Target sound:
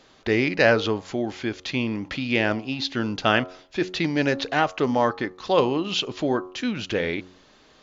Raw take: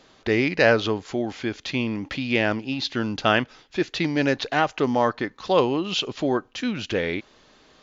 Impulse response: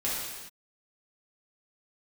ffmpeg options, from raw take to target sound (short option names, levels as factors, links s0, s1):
-af "bandreject=f=91.81:t=h:w=4,bandreject=f=183.62:t=h:w=4,bandreject=f=275.43:t=h:w=4,bandreject=f=367.24:t=h:w=4,bandreject=f=459.05:t=h:w=4,bandreject=f=550.86:t=h:w=4,bandreject=f=642.67:t=h:w=4,bandreject=f=734.48:t=h:w=4,bandreject=f=826.29:t=h:w=4,bandreject=f=918.1:t=h:w=4,bandreject=f=1009.91:t=h:w=4,bandreject=f=1101.72:t=h:w=4,bandreject=f=1193.53:t=h:w=4,bandreject=f=1285.34:t=h:w=4,bandreject=f=1377.15:t=h:w=4"